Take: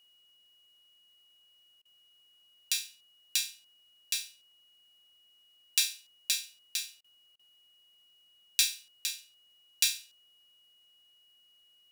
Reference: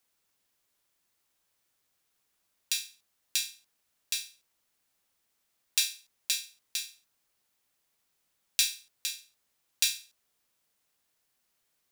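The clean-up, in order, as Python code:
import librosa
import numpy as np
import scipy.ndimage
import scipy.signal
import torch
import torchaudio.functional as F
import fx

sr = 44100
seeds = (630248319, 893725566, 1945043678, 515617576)

y = fx.notch(x, sr, hz=2900.0, q=30.0)
y = fx.fix_interpolate(y, sr, at_s=(1.82, 7.01, 7.36), length_ms=31.0)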